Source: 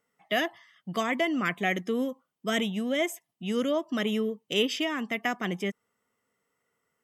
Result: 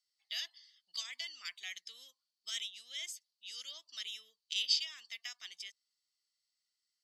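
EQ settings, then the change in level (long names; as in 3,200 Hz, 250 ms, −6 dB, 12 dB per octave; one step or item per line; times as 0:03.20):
four-pole ladder band-pass 4,700 Hz, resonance 80%
+9.5 dB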